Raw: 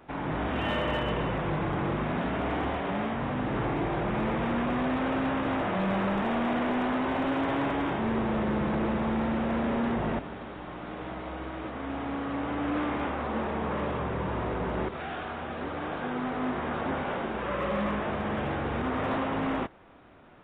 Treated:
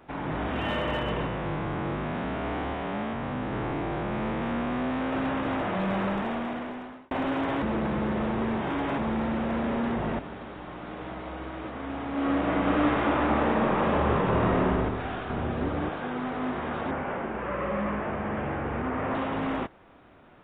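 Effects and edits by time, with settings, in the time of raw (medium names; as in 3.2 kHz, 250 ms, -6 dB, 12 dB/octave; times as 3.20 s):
1.26–5.13 s: spectrogram pixelated in time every 100 ms
6.07–7.11 s: fade out
7.62–8.98 s: reverse
12.11–14.57 s: reverb throw, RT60 2.4 s, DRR -5.5 dB
15.30–15.89 s: bass shelf 400 Hz +10.5 dB
16.91–19.15 s: low-pass 2.6 kHz 24 dB/octave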